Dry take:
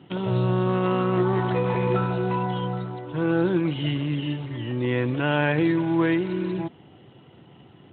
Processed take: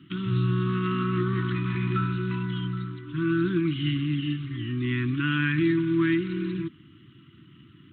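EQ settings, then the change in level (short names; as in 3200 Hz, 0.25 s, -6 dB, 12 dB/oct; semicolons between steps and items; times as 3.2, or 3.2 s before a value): elliptic band-stop 330–1200 Hz, stop band 40 dB; 0.0 dB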